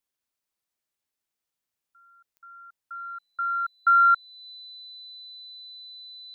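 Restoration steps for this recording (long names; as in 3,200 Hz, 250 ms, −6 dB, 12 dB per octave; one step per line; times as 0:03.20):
click removal
notch filter 4,000 Hz, Q 30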